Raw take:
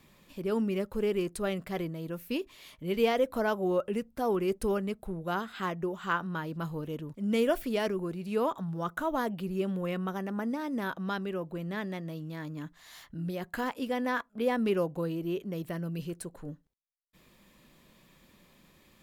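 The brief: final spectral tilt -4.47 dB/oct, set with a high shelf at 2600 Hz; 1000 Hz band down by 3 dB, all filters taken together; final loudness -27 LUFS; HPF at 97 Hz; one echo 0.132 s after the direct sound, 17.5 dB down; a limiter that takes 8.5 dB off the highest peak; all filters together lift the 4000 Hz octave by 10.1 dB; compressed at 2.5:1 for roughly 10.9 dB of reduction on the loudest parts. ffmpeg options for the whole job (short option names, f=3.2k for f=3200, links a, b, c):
-af "highpass=97,equalizer=f=1k:t=o:g=-5.5,highshelf=f=2.6k:g=6.5,equalizer=f=4k:t=o:g=9,acompressor=threshold=-39dB:ratio=2.5,alimiter=level_in=7.5dB:limit=-24dB:level=0:latency=1,volume=-7.5dB,aecho=1:1:132:0.133,volume=14dB"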